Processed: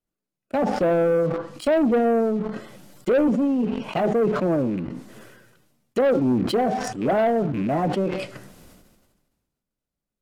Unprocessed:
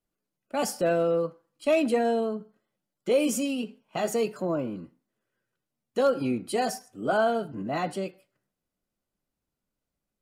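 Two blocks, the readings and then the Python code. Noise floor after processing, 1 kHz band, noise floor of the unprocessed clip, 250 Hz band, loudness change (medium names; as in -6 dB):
under -85 dBFS, +4.5 dB, under -85 dBFS, +8.0 dB, +5.5 dB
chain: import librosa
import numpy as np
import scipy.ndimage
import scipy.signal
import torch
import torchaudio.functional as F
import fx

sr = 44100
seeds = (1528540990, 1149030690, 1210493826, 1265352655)

y = fx.rattle_buzz(x, sr, strikes_db=-37.0, level_db=-34.0)
y = fx.low_shelf(y, sr, hz=360.0, db=3.0)
y = fx.env_lowpass_down(y, sr, base_hz=810.0, full_db=-24.0)
y = fx.leveller(y, sr, passes=2)
y = fx.sustainer(y, sr, db_per_s=40.0)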